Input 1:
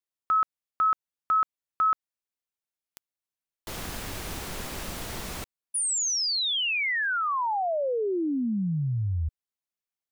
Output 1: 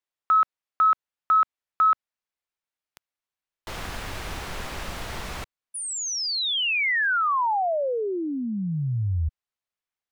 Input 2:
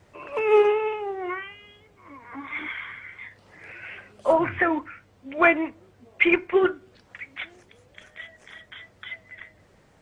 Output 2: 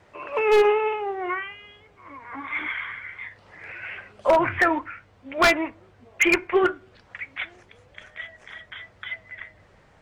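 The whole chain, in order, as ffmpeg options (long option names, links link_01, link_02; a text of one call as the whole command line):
ffmpeg -i in.wav -filter_complex "[0:a]asplit=2[link_01][link_02];[link_02]highpass=frequency=720:poles=1,volume=8dB,asoftclip=type=tanh:threshold=-5dB[link_03];[link_01][link_03]amix=inputs=2:normalize=0,lowpass=frequency=2300:poles=1,volume=-6dB,asubboost=boost=2:cutoff=160,aeval=exprs='0.237*(abs(mod(val(0)/0.237+3,4)-2)-1)':channel_layout=same,volume=2dB" out.wav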